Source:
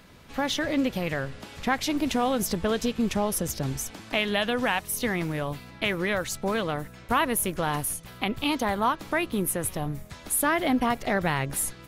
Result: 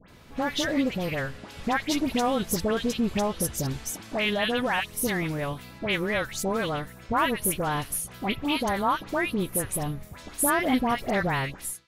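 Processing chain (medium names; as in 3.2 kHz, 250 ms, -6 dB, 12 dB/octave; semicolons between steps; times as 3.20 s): fade out at the end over 0.52 s; phase dispersion highs, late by 85 ms, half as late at 1.7 kHz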